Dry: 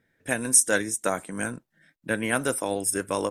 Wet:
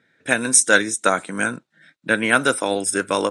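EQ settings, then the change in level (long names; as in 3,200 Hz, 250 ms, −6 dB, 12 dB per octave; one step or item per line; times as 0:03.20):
loudspeaker in its box 140–8,900 Hz, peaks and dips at 1,400 Hz +7 dB, 2,400 Hz +4 dB, 3,800 Hz +8 dB
+6.0 dB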